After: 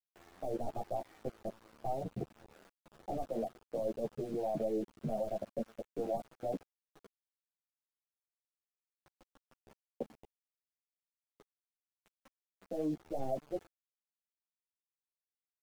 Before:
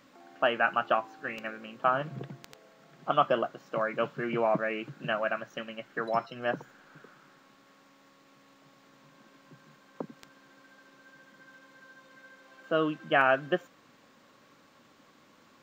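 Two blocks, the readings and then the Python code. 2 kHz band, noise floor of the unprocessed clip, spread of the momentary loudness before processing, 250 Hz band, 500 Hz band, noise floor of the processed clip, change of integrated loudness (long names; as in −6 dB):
below −30 dB, −61 dBFS, 15 LU, −4.0 dB, −7.0 dB, below −85 dBFS, −9.5 dB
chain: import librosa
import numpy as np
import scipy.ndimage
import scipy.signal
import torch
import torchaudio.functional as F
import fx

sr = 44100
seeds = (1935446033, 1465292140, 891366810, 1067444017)

y = fx.tracing_dist(x, sr, depth_ms=0.15)
y = scipy.signal.sosfilt(scipy.signal.cheby1(5, 1.0, 770.0, 'lowpass', fs=sr, output='sos'), y)
y = fx.level_steps(y, sr, step_db=20)
y = np.where(np.abs(y) >= 10.0 ** (-54.5 / 20.0), y, 0.0)
y = fx.ensemble(y, sr)
y = y * librosa.db_to_amplitude(8.0)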